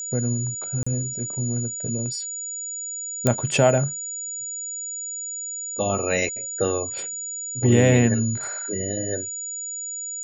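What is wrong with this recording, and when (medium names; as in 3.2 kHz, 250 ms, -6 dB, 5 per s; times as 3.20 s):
whine 6.9 kHz -29 dBFS
0.83–0.86 s: dropout 35 ms
3.27 s: pop -5 dBFS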